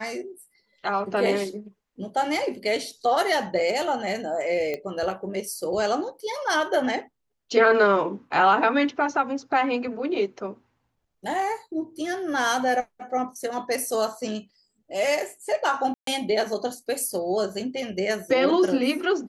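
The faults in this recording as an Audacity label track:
4.740000	4.740000	pop -17 dBFS
15.940000	16.070000	dropout 133 ms

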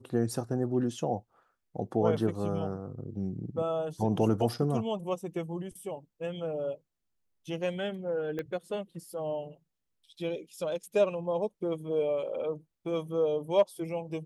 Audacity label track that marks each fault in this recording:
8.390000	8.390000	pop -23 dBFS

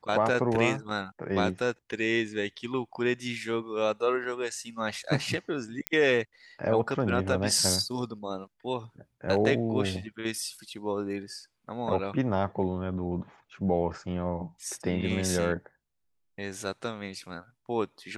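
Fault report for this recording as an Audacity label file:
4.240000	4.240000	dropout 3.1 ms
5.870000	5.870000	pop -10 dBFS

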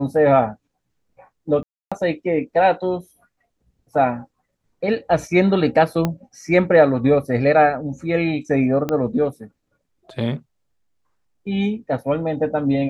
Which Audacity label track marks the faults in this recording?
1.630000	1.920000	dropout 286 ms
6.050000	6.050000	pop -8 dBFS
8.890000	8.890000	pop -10 dBFS

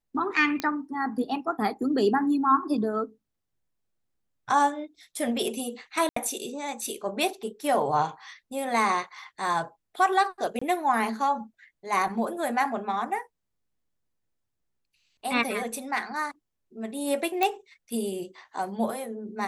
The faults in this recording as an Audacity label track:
0.600000	0.600000	pop -13 dBFS
6.090000	6.160000	dropout 74 ms
10.590000	10.620000	dropout 25 ms
17.430000	17.430000	pop -10 dBFS

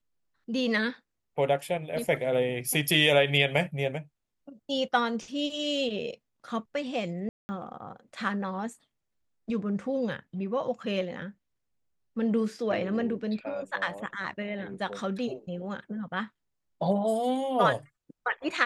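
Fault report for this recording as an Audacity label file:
7.290000	7.490000	dropout 200 ms

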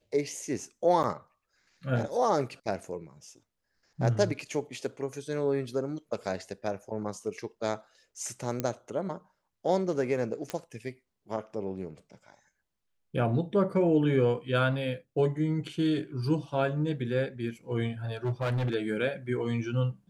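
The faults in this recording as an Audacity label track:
1.030000	1.040000	dropout 8.8 ms
8.600000	8.600000	pop -15 dBFS
10.500000	10.500000	pop -18 dBFS
18.250000	18.750000	clipped -25.5 dBFS

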